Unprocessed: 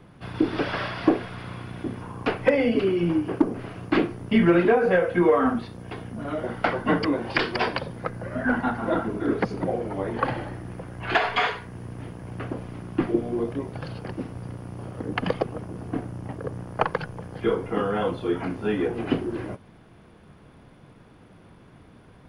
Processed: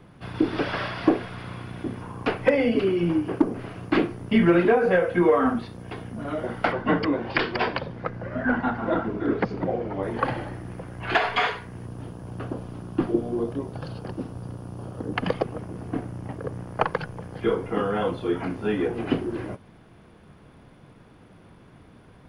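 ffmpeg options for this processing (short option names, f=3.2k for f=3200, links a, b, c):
-filter_complex "[0:a]asettb=1/sr,asplit=3[a][b][c];[a]atrim=end=6.724[d];[b]atrim=start=6.72:end=10.03,asetpts=PTS-STARTPTS,afade=t=in:d=0.004:c=qsin,afade=t=out:st=3.306:d=0.004:c=qsin,lowpass=4.3k[e];[c]atrim=start=10.026[f];[d][e]acrossfade=d=0.004:c1=hsin:c2=qsin[g];[g][f]acrossfade=d=0.004:c1=qsin:c2=hsin,asettb=1/sr,asplit=3[h][i][j];[h]atrim=end=11.864[k];[i]atrim=start=11.86:end=15.14,asetpts=PTS-STARTPTS,afade=t=in:d=0.004:c=qsin,afade=t=out:st=3.276:d=0.004:c=qsin,equalizer=f=2.1k:t=o:w=0.6:g=-9[l];[j]atrim=start=15.136[m];[k][l]acrossfade=d=0.004:c1=hsin:c2=qsin[n];[n][m]acrossfade=d=0.004:c1=qsin:c2=hsin"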